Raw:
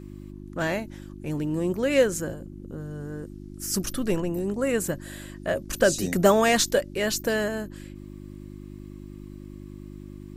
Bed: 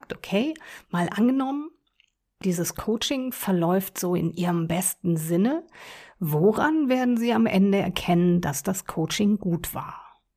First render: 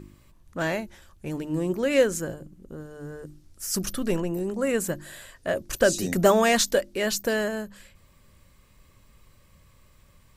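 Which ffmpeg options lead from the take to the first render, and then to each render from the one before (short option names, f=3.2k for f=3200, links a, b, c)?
-af "bandreject=f=50:t=h:w=4,bandreject=f=100:t=h:w=4,bandreject=f=150:t=h:w=4,bandreject=f=200:t=h:w=4,bandreject=f=250:t=h:w=4,bandreject=f=300:t=h:w=4,bandreject=f=350:t=h:w=4"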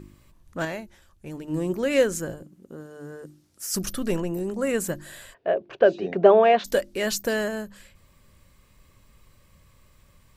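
-filter_complex "[0:a]asettb=1/sr,asplit=3[a][b][c];[a]atrim=end=2.424[d];[b]atrim=start=2.42:end=3.73,asetpts=PTS-STARTPTS,afade=t=in:d=0.004:c=qsin,afade=t=out:st=1.306:d=0.004:c=qsin,highpass=160[e];[c]atrim=start=3.726[f];[d][e]acrossfade=d=0.004:c1=hsin:c2=qsin[g];[g][f]acrossfade=d=0.004:c1=qsin:c2=hsin,asplit=3[h][i][j];[h]afade=t=out:st=5.33:d=0.02[k];[i]highpass=230,equalizer=f=260:t=q:w=4:g=-7,equalizer=f=410:t=q:w=4:g=8,equalizer=f=710:t=q:w=4:g=7,equalizer=f=1.3k:t=q:w=4:g=-4,equalizer=f=1.9k:t=q:w=4:g=-6,lowpass=f=2.8k:w=0.5412,lowpass=f=2.8k:w=1.3066,afade=t=in:st=5.33:d=0.02,afade=t=out:st=6.64:d=0.02[l];[j]afade=t=in:st=6.64:d=0.02[m];[k][l][m]amix=inputs=3:normalize=0,asplit=3[n][o][p];[n]atrim=end=0.652[q];[o]atrim=start=0.648:end=1.482,asetpts=PTS-STARTPTS,volume=-5dB[r];[p]atrim=start=1.478[s];[q][r]acrossfade=d=0.004:c1=hsin:c2=hsin[t];[t][s]acrossfade=d=0.004:c1=hsin:c2=hsin"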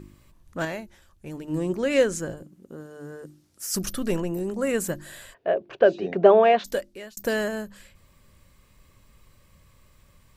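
-filter_complex "[0:a]asettb=1/sr,asplit=3[a][b][c];[a]atrim=end=1.584[d];[b]atrim=start=1.58:end=2.37,asetpts=PTS-STARTPTS,afade=t=in:d=0.004:c=qsin,afade=t=out:st=0.786:d=0.004:c=qsin,lowpass=9.9k[e];[c]atrim=start=2.366[f];[d][e]acrossfade=d=0.004:c1=hsin:c2=qsin[g];[g][f]acrossfade=d=0.004:c1=qsin:c2=hsin,asplit=2[h][i];[h]atrim=end=7.17,asetpts=PTS-STARTPTS,afade=t=out:st=6.48:d=0.69[j];[i]atrim=start=7.17,asetpts=PTS-STARTPTS,afade=t=in:d=0.004:c=hsin[k];[j][k]concat=n=2:v=0:a=1"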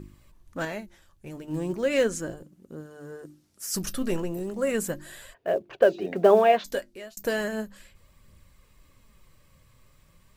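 -filter_complex "[0:a]asplit=2[a][b];[b]acrusher=bits=5:mode=log:mix=0:aa=0.000001,volume=-10dB[c];[a][c]amix=inputs=2:normalize=0,flanger=delay=0.1:depth=8.4:regen=62:speed=0.36:shape=triangular"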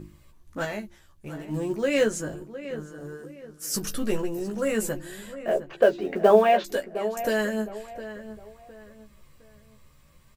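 -filter_complex "[0:a]asplit=2[a][b];[b]adelay=14,volume=-4.5dB[c];[a][c]amix=inputs=2:normalize=0,asplit=2[d][e];[e]adelay=710,lowpass=f=2.4k:p=1,volume=-12.5dB,asplit=2[f][g];[g]adelay=710,lowpass=f=2.4k:p=1,volume=0.34,asplit=2[h][i];[i]adelay=710,lowpass=f=2.4k:p=1,volume=0.34[j];[d][f][h][j]amix=inputs=4:normalize=0"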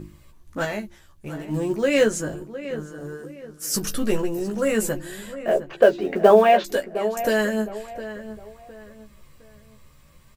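-af "volume=4dB,alimiter=limit=-2dB:level=0:latency=1"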